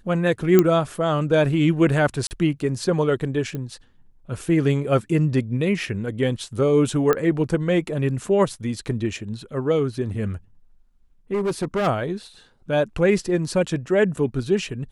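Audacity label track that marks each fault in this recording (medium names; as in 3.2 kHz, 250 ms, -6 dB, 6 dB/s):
0.590000	0.590000	pop -3 dBFS
2.270000	2.310000	dropout 39 ms
3.550000	3.550000	pop -18 dBFS
7.130000	7.130000	pop -8 dBFS
11.330000	11.880000	clipped -19 dBFS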